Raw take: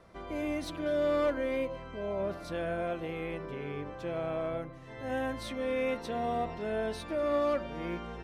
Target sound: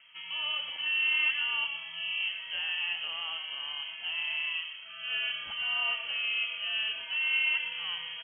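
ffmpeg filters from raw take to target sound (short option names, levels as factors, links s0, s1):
-filter_complex "[0:a]asplit=6[s0][s1][s2][s3][s4][s5];[s1]adelay=120,afreqshift=33,volume=0.316[s6];[s2]adelay=240,afreqshift=66,volume=0.14[s7];[s3]adelay=360,afreqshift=99,volume=0.061[s8];[s4]adelay=480,afreqshift=132,volume=0.0269[s9];[s5]adelay=600,afreqshift=165,volume=0.0119[s10];[s0][s6][s7][s8][s9][s10]amix=inputs=6:normalize=0,lowpass=f=2800:t=q:w=0.5098,lowpass=f=2800:t=q:w=0.6013,lowpass=f=2800:t=q:w=0.9,lowpass=f=2800:t=q:w=2.563,afreqshift=-3300"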